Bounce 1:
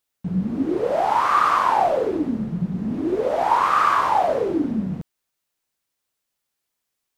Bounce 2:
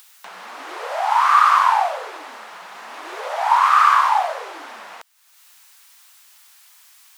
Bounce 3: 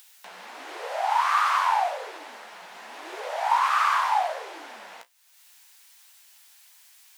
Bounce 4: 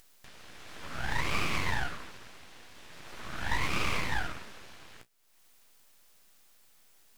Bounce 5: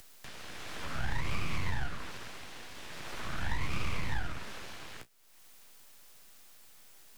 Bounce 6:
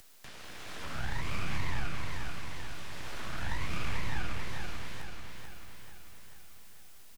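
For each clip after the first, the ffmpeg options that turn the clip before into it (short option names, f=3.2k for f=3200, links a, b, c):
-filter_complex "[0:a]highpass=f=880:w=0.5412,highpass=f=880:w=1.3066,asplit=2[a][b];[b]acompressor=mode=upward:threshold=-25dB:ratio=2.5,volume=0dB[c];[a][c]amix=inputs=2:normalize=0,volume=-1dB"
-af "equalizer=f=1.2k:w=2.8:g=-6.5,flanger=delay=8.9:depth=9:regen=-43:speed=1.3:shape=triangular"
-af "aeval=exprs='(tanh(5.62*val(0)+0.55)-tanh(0.55))/5.62':c=same,aeval=exprs='abs(val(0))':c=same,volume=-3dB"
-filter_complex "[0:a]acrossover=split=180|400[a][b][c];[a]acompressor=threshold=-32dB:ratio=4[d];[b]acompressor=threshold=-59dB:ratio=4[e];[c]acompressor=threshold=-45dB:ratio=4[f];[d][e][f]amix=inputs=3:normalize=0,volume=5.5dB"
-af "aecho=1:1:439|878|1317|1756|2195|2634|3073:0.596|0.328|0.18|0.0991|0.0545|0.03|0.0165,volume=-1.5dB"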